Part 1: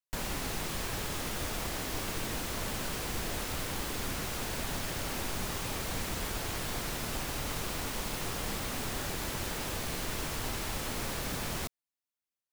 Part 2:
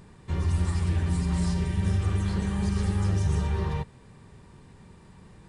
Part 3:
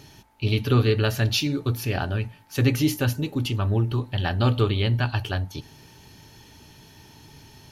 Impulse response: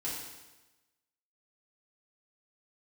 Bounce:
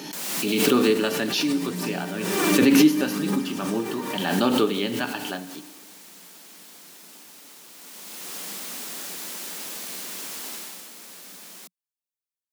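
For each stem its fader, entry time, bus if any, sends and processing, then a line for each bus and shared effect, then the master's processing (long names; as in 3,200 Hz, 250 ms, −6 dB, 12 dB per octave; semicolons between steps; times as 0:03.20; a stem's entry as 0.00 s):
0:10.54 −4.5 dB → 0:10.91 −13 dB, 0.00 s, no send, high-shelf EQ 3,200 Hz +11.5 dB; automatic ducking −12 dB, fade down 1.25 s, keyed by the third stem
−7.0 dB, 0.35 s, send −3.5 dB, phase shifter 0.67 Hz, delay 3.6 ms, feedback 62%
+1.0 dB, 0.00 s, send −11 dB, low-shelf EQ 320 Hz +5 dB; expander for the loud parts 1.5 to 1, over −37 dBFS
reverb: on, RT60 1.1 s, pre-delay 3 ms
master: Chebyshev high-pass filter 180 Hz, order 5; background raised ahead of every attack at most 30 dB per second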